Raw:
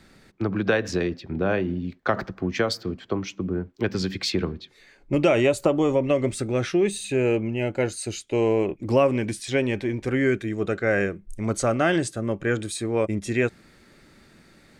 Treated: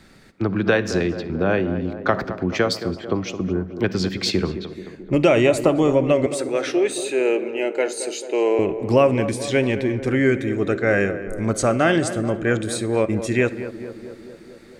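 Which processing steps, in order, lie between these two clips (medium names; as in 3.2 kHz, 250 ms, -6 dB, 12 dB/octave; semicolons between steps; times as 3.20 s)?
6.26–8.59 s: high-pass 330 Hz 24 dB/octave; tape echo 219 ms, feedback 76%, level -10 dB, low-pass 1.3 kHz; reverberation RT60 0.55 s, pre-delay 46 ms, DRR 18.5 dB; trim +3.5 dB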